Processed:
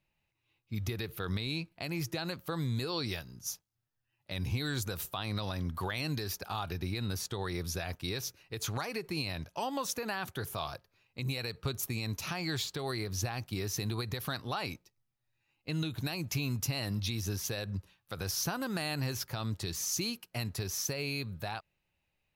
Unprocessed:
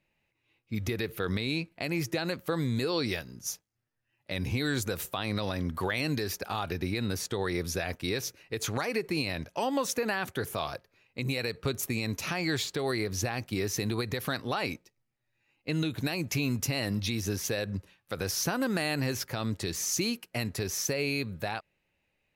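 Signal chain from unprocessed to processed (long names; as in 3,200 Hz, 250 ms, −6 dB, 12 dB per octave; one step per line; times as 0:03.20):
octave-band graphic EQ 250/500/2,000/8,000 Hz −6/−7/−7/−4 dB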